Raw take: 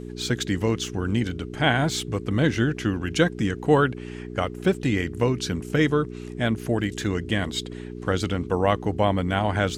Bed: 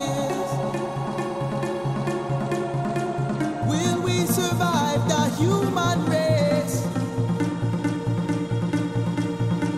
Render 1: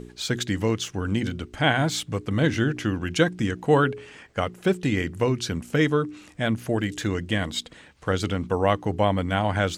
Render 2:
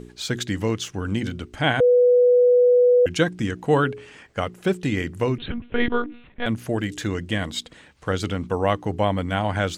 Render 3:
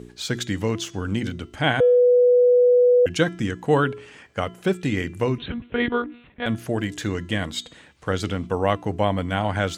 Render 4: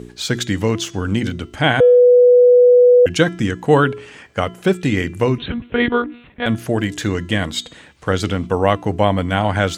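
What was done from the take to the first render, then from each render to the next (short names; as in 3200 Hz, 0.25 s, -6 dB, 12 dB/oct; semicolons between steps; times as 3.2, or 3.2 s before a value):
de-hum 60 Hz, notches 7
1.8–3.06 bleep 492 Hz -12 dBFS; 5.38–6.46 monotone LPC vocoder at 8 kHz 240 Hz
HPF 50 Hz; de-hum 337.5 Hz, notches 26
gain +6 dB; limiter -1 dBFS, peak gain reduction 2 dB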